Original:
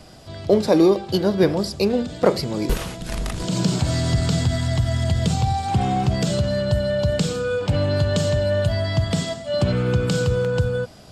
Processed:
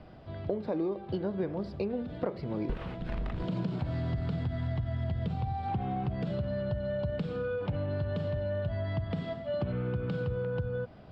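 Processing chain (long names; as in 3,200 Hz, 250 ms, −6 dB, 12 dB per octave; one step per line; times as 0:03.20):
high-shelf EQ 9,400 Hz −9.5 dB
downward compressor, threshold −24 dBFS, peak gain reduction 13 dB
high-frequency loss of the air 420 metres
level −4.5 dB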